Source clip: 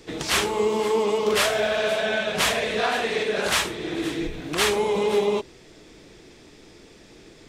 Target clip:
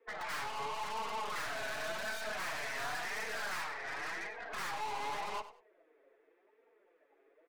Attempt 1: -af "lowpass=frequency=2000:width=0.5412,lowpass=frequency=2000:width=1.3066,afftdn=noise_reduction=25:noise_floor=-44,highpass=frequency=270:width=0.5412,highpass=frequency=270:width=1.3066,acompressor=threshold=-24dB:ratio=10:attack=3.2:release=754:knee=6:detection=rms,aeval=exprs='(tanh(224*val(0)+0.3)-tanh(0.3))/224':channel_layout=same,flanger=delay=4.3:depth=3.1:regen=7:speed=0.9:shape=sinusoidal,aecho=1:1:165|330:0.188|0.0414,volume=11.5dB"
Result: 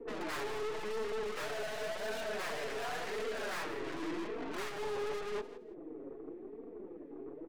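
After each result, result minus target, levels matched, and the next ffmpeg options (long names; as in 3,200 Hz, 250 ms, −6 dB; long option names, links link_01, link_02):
echo 69 ms late; 250 Hz band +13.0 dB
-af "lowpass=frequency=2000:width=0.5412,lowpass=frequency=2000:width=1.3066,afftdn=noise_reduction=25:noise_floor=-44,highpass=frequency=270:width=0.5412,highpass=frequency=270:width=1.3066,acompressor=threshold=-24dB:ratio=10:attack=3.2:release=754:knee=6:detection=rms,aeval=exprs='(tanh(224*val(0)+0.3)-tanh(0.3))/224':channel_layout=same,flanger=delay=4.3:depth=3.1:regen=7:speed=0.9:shape=sinusoidal,aecho=1:1:96|192:0.188|0.0414,volume=11.5dB"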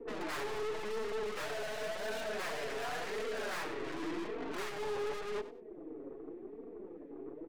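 250 Hz band +13.0 dB
-af "lowpass=frequency=2000:width=0.5412,lowpass=frequency=2000:width=1.3066,afftdn=noise_reduction=25:noise_floor=-44,highpass=frequency=820:width=0.5412,highpass=frequency=820:width=1.3066,acompressor=threshold=-24dB:ratio=10:attack=3.2:release=754:knee=6:detection=rms,aeval=exprs='(tanh(224*val(0)+0.3)-tanh(0.3))/224':channel_layout=same,flanger=delay=4.3:depth=3.1:regen=7:speed=0.9:shape=sinusoidal,aecho=1:1:96|192:0.188|0.0414,volume=11.5dB"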